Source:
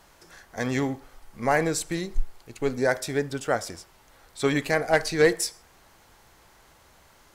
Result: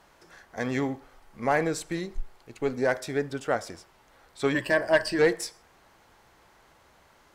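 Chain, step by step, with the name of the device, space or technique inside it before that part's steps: 4.54–5.19 ripple EQ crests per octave 1.3, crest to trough 14 dB; tube preamp driven hard (tube stage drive 11 dB, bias 0.25; low shelf 130 Hz -6 dB; high shelf 4500 Hz -9 dB)

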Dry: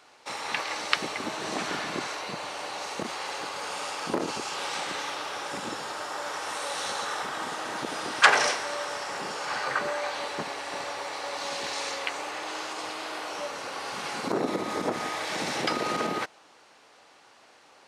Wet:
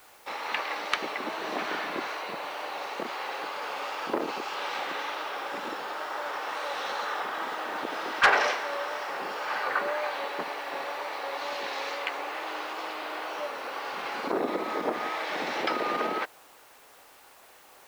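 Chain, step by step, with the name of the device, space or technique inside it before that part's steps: tape answering machine (BPF 300–3200 Hz; soft clip -12 dBFS, distortion -16 dB; wow and flutter; white noise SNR 26 dB); gain +1 dB

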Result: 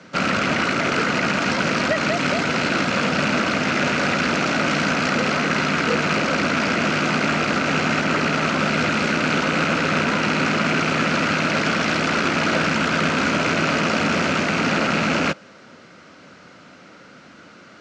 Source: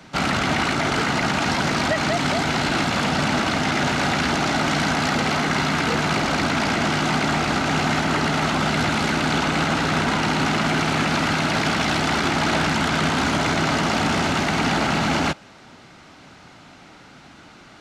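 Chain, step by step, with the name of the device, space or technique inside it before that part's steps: car door speaker with a rattle (rattling part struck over -26 dBFS, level -14 dBFS; speaker cabinet 110–7200 Hz, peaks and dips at 130 Hz -4 dB, 200 Hz +3 dB, 520 Hz +8 dB, 820 Hz -8 dB, 1400 Hz +4 dB, 3600 Hz -4 dB)

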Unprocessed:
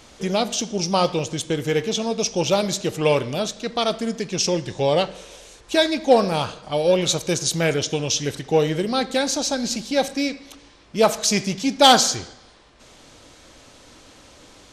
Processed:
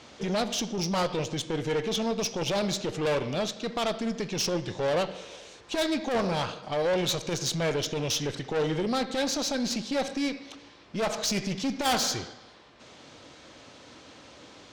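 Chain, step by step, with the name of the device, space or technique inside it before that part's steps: valve radio (BPF 99–5300 Hz; tube stage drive 22 dB, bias 0.3; core saturation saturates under 140 Hz)

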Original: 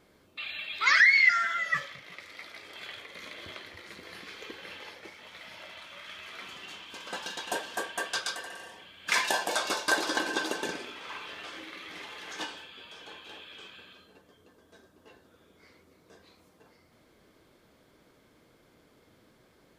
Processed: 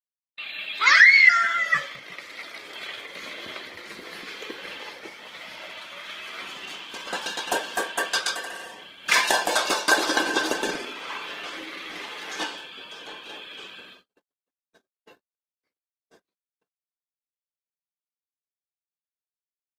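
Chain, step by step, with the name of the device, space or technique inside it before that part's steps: video call (HPF 170 Hz 12 dB/oct; AGC gain up to 7 dB; gate -46 dBFS, range -52 dB; Opus 20 kbps 48000 Hz)

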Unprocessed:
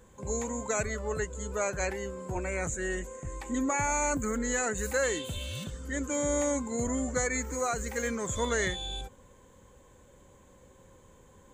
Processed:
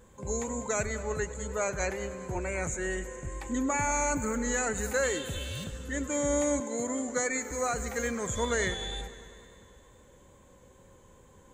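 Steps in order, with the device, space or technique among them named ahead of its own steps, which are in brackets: multi-head tape echo (multi-head echo 0.1 s, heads first and second, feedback 67%, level -19 dB; wow and flutter 19 cents); 6.6–7.51 HPF 240 Hz 12 dB/oct

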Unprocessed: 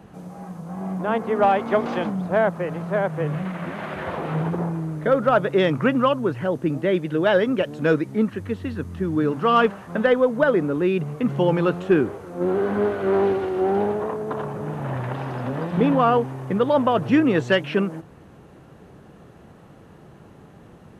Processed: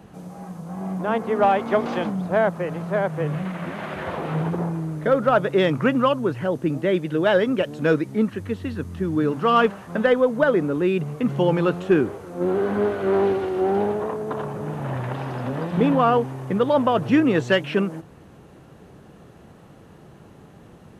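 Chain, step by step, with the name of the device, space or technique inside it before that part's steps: exciter from parts (in parallel at -8.5 dB: HPF 2200 Hz + soft clip -38.5 dBFS, distortion -4 dB)

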